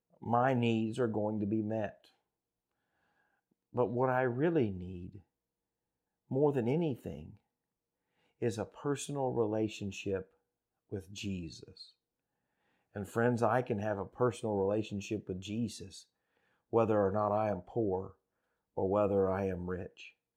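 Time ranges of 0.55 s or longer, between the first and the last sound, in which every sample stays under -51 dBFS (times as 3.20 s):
2.05–3.74 s
5.20–6.31 s
7.34–8.42 s
10.24–10.92 s
11.89–12.95 s
16.03–16.73 s
18.11–18.77 s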